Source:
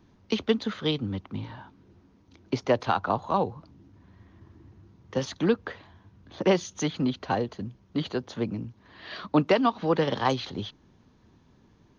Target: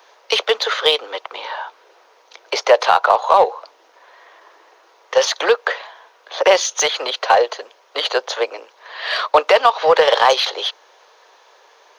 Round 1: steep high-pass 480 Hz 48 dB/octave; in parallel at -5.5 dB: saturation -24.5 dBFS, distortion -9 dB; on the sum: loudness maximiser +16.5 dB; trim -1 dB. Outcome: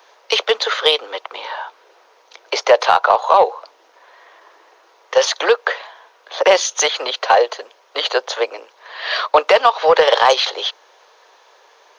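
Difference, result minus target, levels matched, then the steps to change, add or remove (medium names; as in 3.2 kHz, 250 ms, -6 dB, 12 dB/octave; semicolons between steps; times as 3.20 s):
saturation: distortion -6 dB
change: saturation -33.5 dBFS, distortion -3 dB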